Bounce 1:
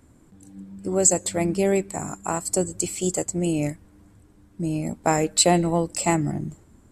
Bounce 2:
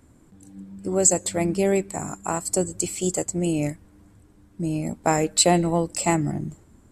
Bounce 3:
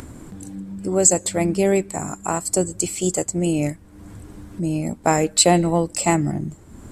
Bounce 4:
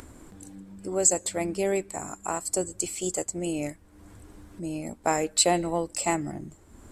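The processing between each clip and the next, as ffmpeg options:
ffmpeg -i in.wav -af anull out.wav
ffmpeg -i in.wav -af "acompressor=mode=upward:threshold=-29dB:ratio=2.5,volume=3dB" out.wav
ffmpeg -i in.wav -af "equalizer=frequency=150:width=0.93:gain=-8.5,volume=-6dB" out.wav

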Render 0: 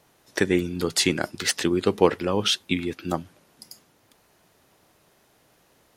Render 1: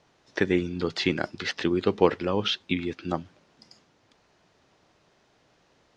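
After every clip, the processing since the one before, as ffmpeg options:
ffmpeg -i in.wav -filter_complex "[0:a]acrossover=split=4300[link_01][link_02];[link_02]acompressor=threshold=-44dB:ratio=4:attack=1:release=60[link_03];[link_01][link_03]amix=inputs=2:normalize=0,lowpass=frequency=6200:width=0.5412,lowpass=frequency=6200:width=1.3066,volume=-2dB" out.wav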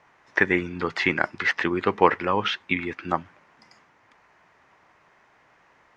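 ffmpeg -i in.wav -af "equalizer=frequency=1000:width_type=o:width=1:gain=10,equalizer=frequency=2000:width_type=o:width=1:gain=12,equalizer=frequency=4000:width_type=o:width=1:gain=-6,volume=-2dB" out.wav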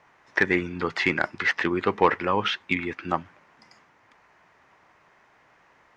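ffmpeg -i in.wav -af "asoftclip=type=tanh:threshold=-7dB" out.wav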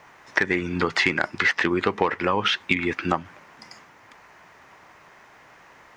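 ffmpeg -i in.wav -af "acompressor=threshold=-26dB:ratio=10,crystalizer=i=1:c=0,volume=8dB" out.wav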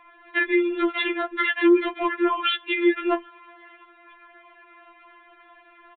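ffmpeg -i in.wav -af "aresample=8000,aresample=44100,afftfilt=real='re*4*eq(mod(b,16),0)':imag='im*4*eq(mod(b,16),0)':win_size=2048:overlap=0.75,volume=2dB" out.wav

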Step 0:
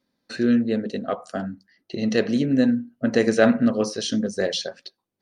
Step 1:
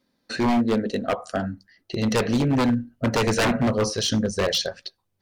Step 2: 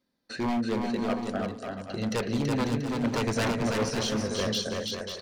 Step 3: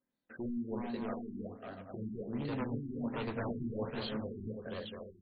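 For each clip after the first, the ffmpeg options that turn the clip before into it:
ffmpeg -i in.wav -af "asubboost=boost=11.5:cutoff=76,aeval=exprs='0.112*(abs(mod(val(0)/0.112+3,4)-2)-1)':channel_layout=same,volume=4dB" out.wav
ffmpeg -i in.wav -af "aecho=1:1:330|544.5|683.9|774.6|833.5:0.631|0.398|0.251|0.158|0.1,volume=-7.5dB" out.wav
ffmpeg -i in.wav -af "flanger=delay=7.3:depth=6.7:regen=-60:speed=1.1:shape=sinusoidal,afftfilt=real='re*lt(b*sr/1024,380*pow(4800/380,0.5+0.5*sin(2*PI*1.3*pts/sr)))':imag='im*lt(b*sr/1024,380*pow(4800/380,0.5+0.5*sin(2*PI*1.3*pts/sr)))':win_size=1024:overlap=0.75,volume=-5.5dB" out.wav

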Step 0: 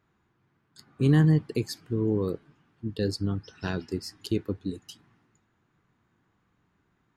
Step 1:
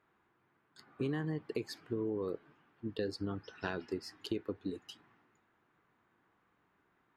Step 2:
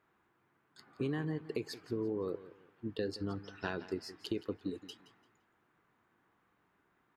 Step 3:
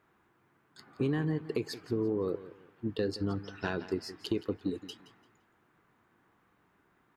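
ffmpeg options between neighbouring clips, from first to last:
ffmpeg -i in.wav -af "bass=frequency=250:gain=-13,treble=frequency=4000:gain=-13,acompressor=threshold=-33dB:ratio=10,volume=1dB" out.wav
ffmpeg -i in.wav -af "aecho=1:1:171|342|513:0.158|0.0428|0.0116" out.wav
ffmpeg -i in.wav -af "lowshelf=frequency=330:gain=3,asoftclip=type=tanh:threshold=-21dB,volume=4dB" out.wav

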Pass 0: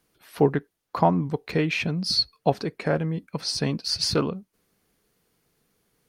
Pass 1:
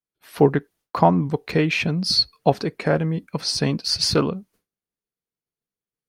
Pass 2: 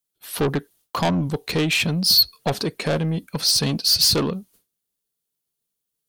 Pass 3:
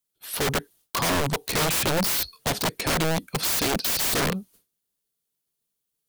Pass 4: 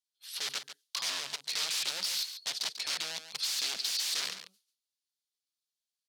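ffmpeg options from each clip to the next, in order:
ffmpeg -i in.wav -af "agate=range=-33dB:threshold=-52dB:ratio=3:detection=peak,volume=4dB" out.wav
ffmpeg -i in.wav -af "asoftclip=type=tanh:threshold=-18.5dB,aexciter=amount=1.8:drive=7.8:freq=3000,volume=2dB" out.wav
ffmpeg -i in.wav -af "aeval=exprs='(mod(9.44*val(0)+1,2)-1)/9.44':channel_layout=same" out.wav
ffmpeg -i in.wav -af "bandpass=frequency=4500:width_type=q:width=1.6:csg=0,aecho=1:1:142:0.299,volume=-1.5dB" out.wav

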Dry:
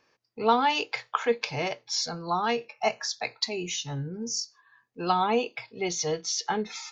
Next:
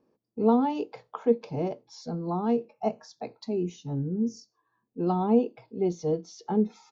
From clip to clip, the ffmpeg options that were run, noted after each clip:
ffmpeg -i in.wav -af "firequalizer=gain_entry='entry(130,0);entry(200,10);entry(570,-1);entry(1800,-21);entry(3200,-19)':delay=0.05:min_phase=1" out.wav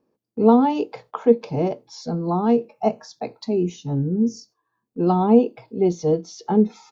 ffmpeg -i in.wav -af "agate=range=-8dB:threshold=-57dB:ratio=16:detection=peak,volume=7.5dB" out.wav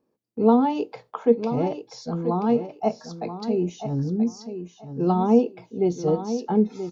ffmpeg -i in.wav -af "aecho=1:1:981|1962|2943:0.316|0.0632|0.0126,volume=-3dB" out.wav

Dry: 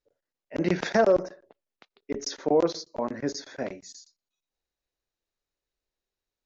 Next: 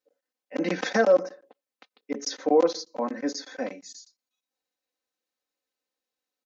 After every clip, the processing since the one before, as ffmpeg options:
ffmpeg -i in.wav -af "highpass=230,aecho=1:1:3.9:0.9,volume=-1dB" out.wav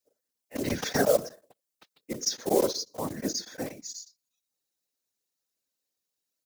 ffmpeg -i in.wav -af "acrusher=bits=5:mode=log:mix=0:aa=0.000001,bass=frequency=250:gain=10,treble=frequency=4000:gain=13,afftfilt=real='hypot(re,im)*cos(2*PI*random(0))':imag='hypot(re,im)*sin(2*PI*random(1))':win_size=512:overlap=0.75" out.wav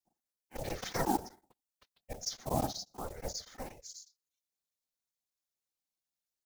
ffmpeg -i in.wav -af "aeval=exprs='val(0)*sin(2*PI*260*n/s)':channel_layout=same,volume=-5.5dB" out.wav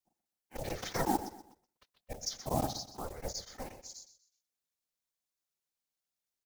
ffmpeg -i in.wav -af "aecho=1:1:126|252|378:0.2|0.0678|0.0231" out.wav

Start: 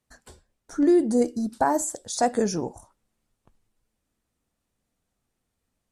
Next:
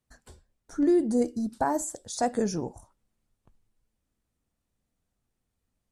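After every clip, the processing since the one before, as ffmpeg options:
ffmpeg -i in.wav -af "lowshelf=frequency=180:gain=6.5,volume=-5dB" out.wav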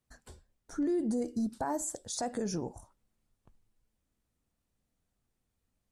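ffmpeg -i in.wav -af "alimiter=limit=-24dB:level=0:latency=1:release=117,volume=-1dB" out.wav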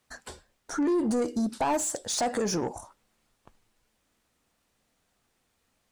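ffmpeg -i in.wav -filter_complex "[0:a]asplit=2[link_01][link_02];[link_02]highpass=frequency=720:poles=1,volume=16dB,asoftclip=type=tanh:threshold=-24.5dB[link_03];[link_01][link_03]amix=inputs=2:normalize=0,lowpass=frequency=5400:poles=1,volume=-6dB,volume=5dB" out.wav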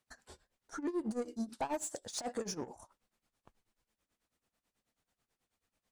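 ffmpeg -i in.wav -af "tremolo=f=9.2:d=0.86,volume=-7.5dB" out.wav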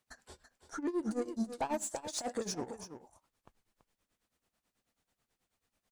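ffmpeg -i in.wav -af "aecho=1:1:333:0.316,volume=1.5dB" out.wav

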